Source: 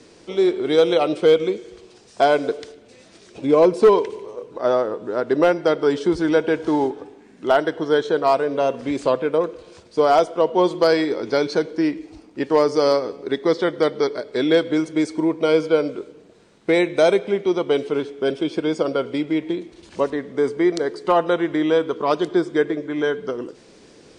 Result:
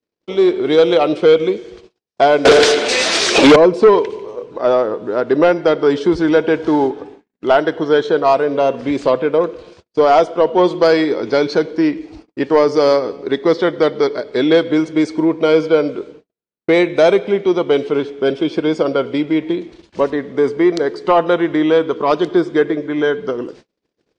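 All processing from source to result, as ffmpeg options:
-filter_complex "[0:a]asettb=1/sr,asplit=3[a][b][c];[a]atrim=end=2.454[d];[b]atrim=start=2.45:end=3.56,asetpts=PTS-STARTPTS,afade=t=in:d=0.004:c=qsin,afade=t=out:st=1.106:d=0.004:c=qsin,aemphasis=mode=production:type=bsi,acontrast=41,asplit=2[e][f];[f]highpass=f=720:p=1,volume=33dB,asoftclip=type=tanh:threshold=-3.5dB[g];[e][g]amix=inputs=2:normalize=0,lowpass=f=4.1k:p=1,volume=-6dB[h];[c]atrim=start=3.556[i];[d][h]acrossfade=d=0.004:c1=hsin:c2=qsin[j];[j][i]acrossfade=d=0.004:c1=qsin:c2=hsin,agate=range=-46dB:threshold=-43dB:ratio=16:detection=peak,lowpass=5.4k,acontrast=43"

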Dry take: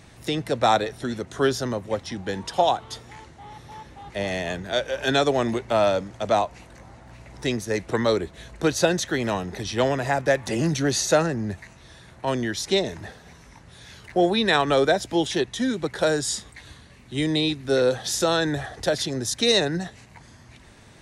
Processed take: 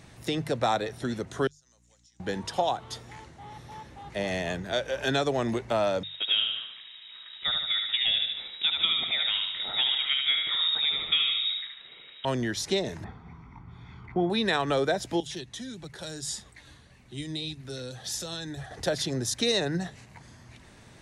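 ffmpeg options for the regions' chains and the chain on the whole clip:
-filter_complex "[0:a]asettb=1/sr,asplit=3[a][b][c];[a]atrim=end=1.474[d];[b]atrim=start=1.47:end=2.2,asetpts=PTS-STARTPTS,afade=t=in:d=0.004:c=qsin,afade=t=out:st=0.726:d=0.004:c=qsin,bandpass=f=6.9k:t=q:w=4.5,aeval=exprs='val(0)+0.000891*(sin(2*PI*60*n/s)+sin(2*PI*2*60*n/s)/2+sin(2*PI*3*60*n/s)/3+sin(2*PI*4*60*n/s)/4+sin(2*PI*5*60*n/s)/5)':c=same,acompressor=threshold=-56dB:ratio=4:attack=3.2:release=140:knee=1:detection=peak[e];[c]atrim=start=2.196[f];[d][e]acrossfade=d=0.004:c1=hsin:c2=qsin[g];[g][f]acrossfade=d=0.004:c1=qsin:c2=hsin,asettb=1/sr,asplit=3[h][i][j];[h]atrim=end=6.034[k];[i]atrim=start=6.03:end=12.25,asetpts=PTS-STARTPTS,afade=t=in:d=0.004:c=qsin,afade=t=out:st=6.216:d=0.004:c=qsin,aecho=1:1:74|148|222|296|370|444:0.562|0.287|0.146|0.0746|0.038|0.0194,atrim=end_sample=274302,lowpass=f=3.3k:t=q:w=0.5098,lowpass=f=3.3k:t=q:w=0.6013,lowpass=f=3.3k:t=q:w=0.9,lowpass=f=3.3k:t=q:w=2.563,afreqshift=-3900[l];[j]atrim=start=12.246[m];[k][l]acrossfade=d=0.004:c1=hsin:c2=qsin[n];[n][m]acrossfade=d=0.004:c1=qsin:c2=hsin,asettb=1/sr,asplit=3[o][p][q];[o]atrim=end=13.044[r];[p]atrim=start=13.04:end=14.3,asetpts=PTS-STARTPTS,afade=t=in:d=0.004:c=qsin,afade=t=out:st=1.256:d=0.004:c=qsin,lowpass=1.6k,aecho=1:1:0.9:0.84,atrim=end_sample=55566[s];[q]atrim=start=14.296[t];[r][s]acrossfade=d=0.004:c1=hsin:c2=qsin[u];[u][t]acrossfade=d=0.004:c1=qsin:c2=hsin,asettb=1/sr,asplit=3[v][w][x];[v]atrim=end=15.204[y];[w]atrim=start=15.2:end=18.71,asetpts=PTS-STARTPTS,afade=t=in:d=0.004:c=qsin,afade=t=out:st=3.506:d=0.004:c=qsin,acrossover=split=180|3000[z][aa][ab];[aa]acompressor=threshold=-37dB:ratio=3:attack=3.2:release=140:knee=2.83:detection=peak[ac];[z][ac][ab]amix=inputs=3:normalize=0,flanger=delay=1.1:depth=2.6:regen=63:speed=1.7:shape=sinusoidal[ad];[x]atrim=start=18.706[ae];[y][ad]acrossfade=d=0.004:c1=hsin:c2=qsin[af];[af][ae]acrossfade=d=0.004:c1=qsin:c2=hsin,equalizer=f=140:t=o:w=0.64:g=3.5,bandreject=f=50:t=h:w=6,bandreject=f=100:t=h:w=6,bandreject=f=150:t=h:w=6,acompressor=threshold=-22dB:ratio=2,volume=-2.5dB"

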